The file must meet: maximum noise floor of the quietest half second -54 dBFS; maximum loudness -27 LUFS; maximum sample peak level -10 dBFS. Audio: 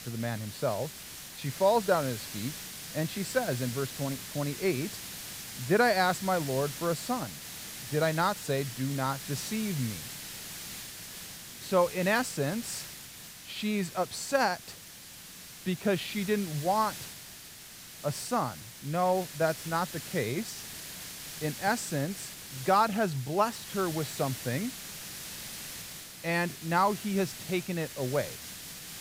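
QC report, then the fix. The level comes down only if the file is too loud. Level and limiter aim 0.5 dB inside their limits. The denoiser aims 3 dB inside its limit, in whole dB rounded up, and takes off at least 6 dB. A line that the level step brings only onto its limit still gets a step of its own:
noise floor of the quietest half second -48 dBFS: fail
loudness -31.5 LUFS: pass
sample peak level -12.0 dBFS: pass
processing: noise reduction 9 dB, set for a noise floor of -48 dBFS

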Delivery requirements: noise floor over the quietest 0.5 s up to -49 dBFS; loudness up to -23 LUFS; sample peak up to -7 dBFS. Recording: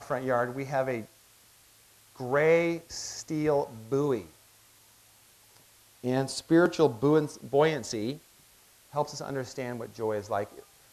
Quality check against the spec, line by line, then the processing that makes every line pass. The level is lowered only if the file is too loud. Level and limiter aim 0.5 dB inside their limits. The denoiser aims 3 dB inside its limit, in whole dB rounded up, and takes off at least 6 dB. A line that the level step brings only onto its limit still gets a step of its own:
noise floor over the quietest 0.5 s -59 dBFS: pass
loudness -29.0 LUFS: pass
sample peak -10.5 dBFS: pass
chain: none needed

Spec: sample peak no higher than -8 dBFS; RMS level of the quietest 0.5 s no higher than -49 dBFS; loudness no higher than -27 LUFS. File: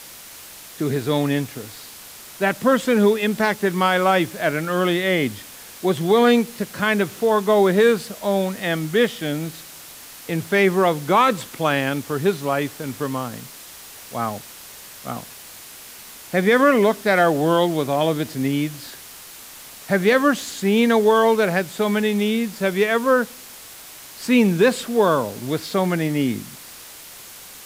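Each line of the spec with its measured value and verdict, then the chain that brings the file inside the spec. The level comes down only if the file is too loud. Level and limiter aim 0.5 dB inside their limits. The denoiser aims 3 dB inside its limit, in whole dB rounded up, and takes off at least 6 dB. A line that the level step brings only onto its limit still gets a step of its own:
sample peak -5.5 dBFS: fail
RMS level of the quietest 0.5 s -41 dBFS: fail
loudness -20.0 LUFS: fail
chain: noise reduction 6 dB, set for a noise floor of -41 dBFS; trim -7.5 dB

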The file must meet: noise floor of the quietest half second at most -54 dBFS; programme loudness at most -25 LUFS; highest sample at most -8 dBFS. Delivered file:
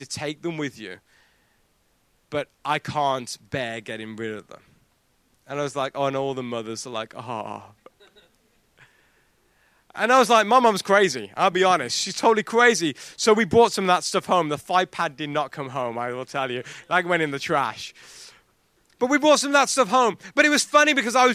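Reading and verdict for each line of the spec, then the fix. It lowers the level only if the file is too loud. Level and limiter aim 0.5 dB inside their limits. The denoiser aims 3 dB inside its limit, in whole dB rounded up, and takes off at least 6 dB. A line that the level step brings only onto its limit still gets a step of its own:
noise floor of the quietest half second -65 dBFS: pass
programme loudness -22.0 LUFS: fail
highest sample -4.0 dBFS: fail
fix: trim -3.5 dB; peak limiter -8.5 dBFS

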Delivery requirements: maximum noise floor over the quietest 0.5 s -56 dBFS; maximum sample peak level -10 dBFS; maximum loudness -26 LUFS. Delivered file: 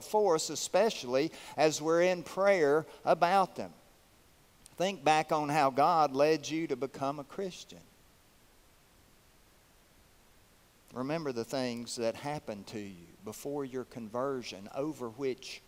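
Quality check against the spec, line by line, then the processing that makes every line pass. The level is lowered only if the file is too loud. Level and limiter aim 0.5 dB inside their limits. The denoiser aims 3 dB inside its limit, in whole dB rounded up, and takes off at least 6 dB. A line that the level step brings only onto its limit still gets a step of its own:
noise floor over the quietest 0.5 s -63 dBFS: pass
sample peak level -12.5 dBFS: pass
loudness -31.5 LUFS: pass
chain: none needed

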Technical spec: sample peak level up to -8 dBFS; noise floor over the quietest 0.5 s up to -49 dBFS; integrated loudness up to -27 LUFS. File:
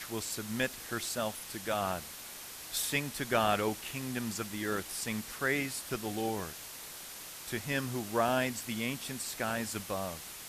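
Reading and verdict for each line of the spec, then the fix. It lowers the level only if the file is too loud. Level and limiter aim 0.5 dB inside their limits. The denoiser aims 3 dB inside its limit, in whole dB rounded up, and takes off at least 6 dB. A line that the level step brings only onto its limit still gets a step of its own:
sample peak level -15.0 dBFS: pass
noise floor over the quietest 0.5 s -46 dBFS: fail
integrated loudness -34.5 LUFS: pass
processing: noise reduction 6 dB, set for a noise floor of -46 dBFS

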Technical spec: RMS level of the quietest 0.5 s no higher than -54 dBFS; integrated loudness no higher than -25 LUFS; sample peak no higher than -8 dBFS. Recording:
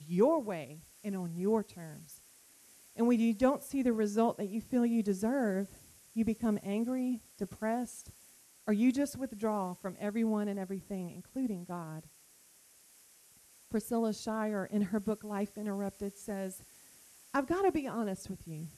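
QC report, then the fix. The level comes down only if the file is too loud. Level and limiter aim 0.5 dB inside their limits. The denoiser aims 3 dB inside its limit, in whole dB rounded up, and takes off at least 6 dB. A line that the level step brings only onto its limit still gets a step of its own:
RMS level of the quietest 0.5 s -62 dBFS: pass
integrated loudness -34.0 LUFS: pass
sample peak -14.5 dBFS: pass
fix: none needed

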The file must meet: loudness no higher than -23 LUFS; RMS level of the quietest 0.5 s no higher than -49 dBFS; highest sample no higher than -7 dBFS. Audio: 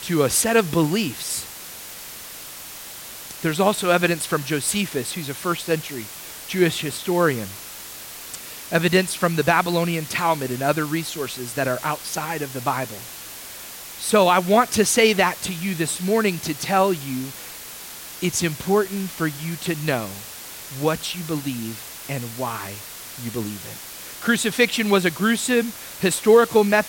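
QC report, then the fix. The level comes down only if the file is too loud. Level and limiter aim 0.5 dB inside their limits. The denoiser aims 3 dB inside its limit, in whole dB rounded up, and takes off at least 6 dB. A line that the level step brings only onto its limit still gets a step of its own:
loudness -21.5 LUFS: fail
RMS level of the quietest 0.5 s -37 dBFS: fail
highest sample -4.5 dBFS: fail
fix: noise reduction 13 dB, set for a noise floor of -37 dBFS; trim -2 dB; peak limiter -7.5 dBFS

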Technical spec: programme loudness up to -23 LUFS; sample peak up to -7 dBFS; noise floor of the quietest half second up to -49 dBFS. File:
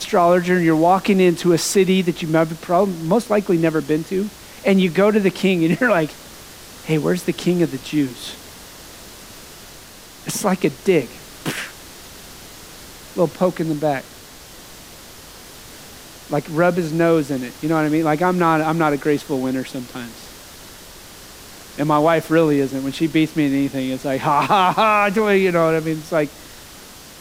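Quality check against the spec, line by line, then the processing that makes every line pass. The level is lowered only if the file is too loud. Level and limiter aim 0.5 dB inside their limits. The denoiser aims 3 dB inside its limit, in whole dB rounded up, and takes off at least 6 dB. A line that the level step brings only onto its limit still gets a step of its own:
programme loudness -18.5 LUFS: fail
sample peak -4.0 dBFS: fail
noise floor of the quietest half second -41 dBFS: fail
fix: noise reduction 6 dB, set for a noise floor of -41 dBFS; trim -5 dB

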